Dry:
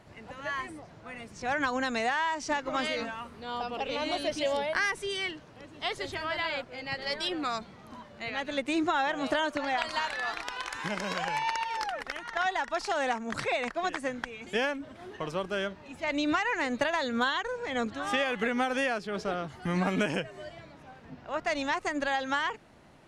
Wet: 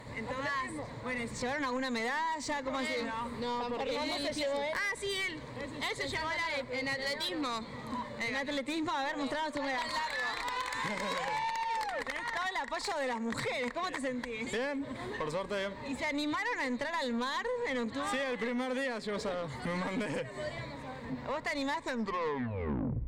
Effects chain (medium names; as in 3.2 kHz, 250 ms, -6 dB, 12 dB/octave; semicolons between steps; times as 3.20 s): tape stop on the ending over 1.41 s; rippled EQ curve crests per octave 1, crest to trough 10 dB; compression 4:1, threshold -37 dBFS, peak gain reduction 13.5 dB; saturation -35.5 dBFS, distortion -14 dB; on a send: reverberation RT60 1.9 s, pre-delay 17 ms, DRR 21 dB; on the sum: trim +7 dB